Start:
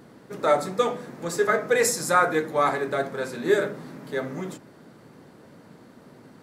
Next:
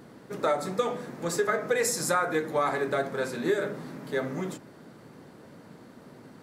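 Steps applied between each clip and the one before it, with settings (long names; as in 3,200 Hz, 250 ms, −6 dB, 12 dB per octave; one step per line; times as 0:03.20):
downward compressor 6 to 1, threshold −22 dBFS, peak gain reduction 8 dB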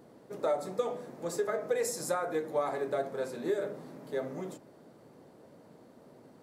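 drawn EQ curve 200 Hz 0 dB, 620 Hz +7 dB, 1,500 Hz −3 dB, 11,000 Hz +2 dB
level −9 dB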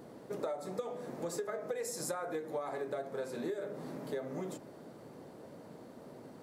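downward compressor 6 to 1, threshold −40 dBFS, peak gain reduction 14.5 dB
level +4.5 dB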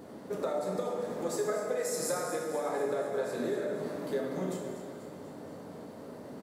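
repeating echo 243 ms, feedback 60%, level −11 dB
dense smooth reverb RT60 1.4 s, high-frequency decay 0.85×, DRR 0.5 dB
level +2.5 dB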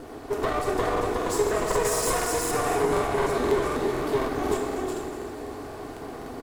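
lower of the sound and its delayed copy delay 2.7 ms
single-tap delay 366 ms −3.5 dB
regular buffer underruns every 0.25 s, samples 2,048, repeat, from 0:00.92
level +8.5 dB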